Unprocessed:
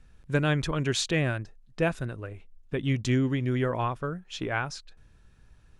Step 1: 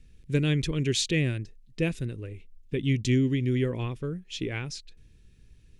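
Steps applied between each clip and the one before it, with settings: high-order bell 970 Hz -15 dB; trim +1.5 dB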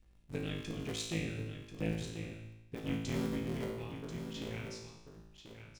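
cycle switcher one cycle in 3, muted; feedback comb 55 Hz, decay 0.93 s, harmonics all, mix 90%; delay 1038 ms -9.5 dB; trim +1 dB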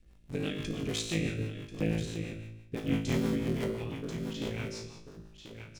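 hum notches 50/100/150 Hz; rotary cabinet horn 6 Hz; trim +7.5 dB

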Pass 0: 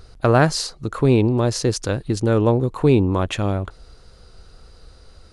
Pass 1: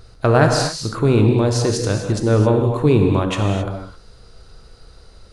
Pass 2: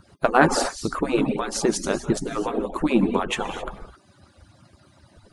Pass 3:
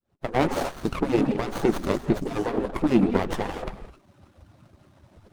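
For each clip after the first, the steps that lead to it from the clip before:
gated-style reverb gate 290 ms flat, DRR 2.5 dB
harmonic-percussive separation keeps percussive; peaking EQ 4.7 kHz -7 dB 0.64 oct; trim +2 dB
fade-in on the opening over 0.78 s; sliding maximum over 17 samples

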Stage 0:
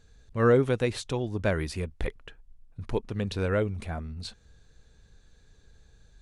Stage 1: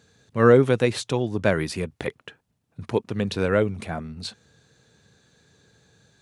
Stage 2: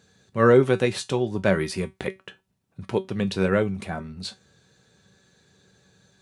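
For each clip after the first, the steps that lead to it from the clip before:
high-pass 110 Hz 24 dB/octave; trim +6 dB
feedback comb 190 Hz, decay 0.19 s, harmonics all, mix 70%; trim +6.5 dB

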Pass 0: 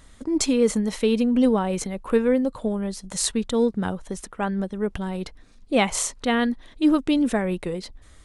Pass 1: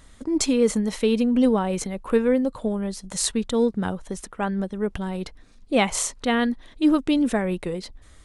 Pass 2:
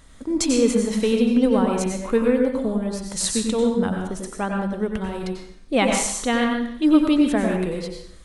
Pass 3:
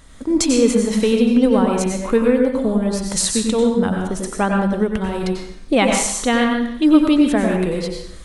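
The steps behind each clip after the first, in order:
no audible change
reverberation RT60 0.65 s, pre-delay 86 ms, DRR 1.5 dB
recorder AGC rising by 7.1 dB/s; trim +3.5 dB

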